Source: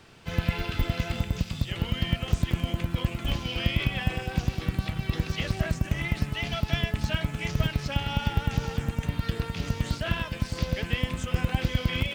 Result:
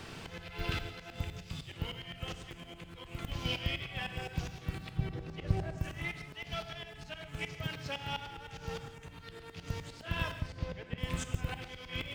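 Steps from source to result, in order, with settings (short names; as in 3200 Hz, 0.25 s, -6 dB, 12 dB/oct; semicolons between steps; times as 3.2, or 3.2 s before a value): 4.97–5.78 tilt shelf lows +8 dB, about 1100 Hz; 7.47–8.12 HPF 96 Hz; dynamic EQ 220 Hz, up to -8 dB, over -45 dBFS, Q 3.5; 10.4–10.98 LPF 1800 Hz 6 dB/oct; auto swell 0.572 s; non-linear reverb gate 0.2 s flat, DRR 8.5 dB; gain +6.5 dB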